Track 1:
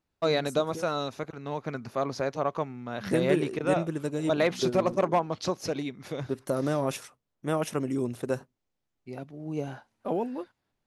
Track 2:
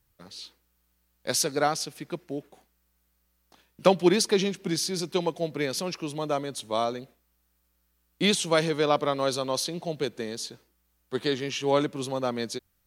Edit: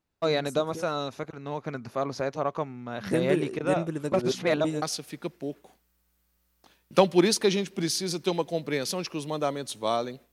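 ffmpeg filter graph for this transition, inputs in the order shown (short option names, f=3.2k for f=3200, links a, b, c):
-filter_complex "[0:a]apad=whole_dur=10.32,atrim=end=10.32,asplit=2[a][b];[a]atrim=end=4.122[c];[b]atrim=start=4.118:end=4.822,asetpts=PTS-STARTPTS,areverse[d];[1:a]atrim=start=1.698:end=7.2[e];[c][d]acrossfade=d=0.004:c1=hsin:c2=hsin[f];[f][e]acrossfade=d=0.004:c1=hsin:c2=hsin"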